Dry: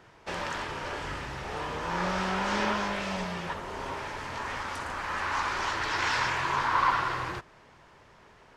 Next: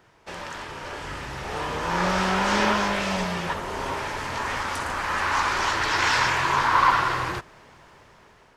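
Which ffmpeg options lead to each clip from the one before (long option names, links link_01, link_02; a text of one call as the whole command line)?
ffmpeg -i in.wav -af "highshelf=frequency=9400:gain=8,dynaudnorm=framelen=530:gausssize=5:maxgain=9dB,volume=-2.5dB" out.wav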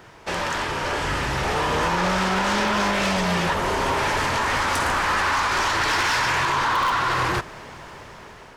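ffmpeg -i in.wav -filter_complex "[0:a]asplit=2[link_01][link_02];[link_02]aeval=exprs='(mod(3.16*val(0)+1,2)-1)/3.16':channel_layout=same,volume=-4dB[link_03];[link_01][link_03]amix=inputs=2:normalize=0,alimiter=limit=-16dB:level=0:latency=1:release=145,asoftclip=type=tanh:threshold=-24dB,volume=7dB" out.wav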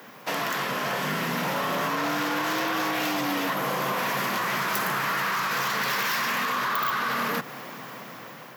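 ffmpeg -i in.wav -af "acompressor=threshold=-25dB:ratio=6,aexciter=amount=6.9:drive=8.9:freq=12000,afreqshift=110" out.wav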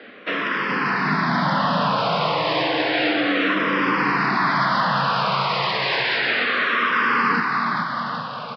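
ffmpeg -i in.wav -filter_complex "[0:a]asplit=2[link_01][link_02];[link_02]aecho=0:1:420|798|1138|1444|1720:0.631|0.398|0.251|0.158|0.1[link_03];[link_01][link_03]amix=inputs=2:normalize=0,aresample=11025,aresample=44100,asplit=2[link_04][link_05];[link_05]afreqshift=-0.31[link_06];[link_04][link_06]amix=inputs=2:normalize=1,volume=7.5dB" out.wav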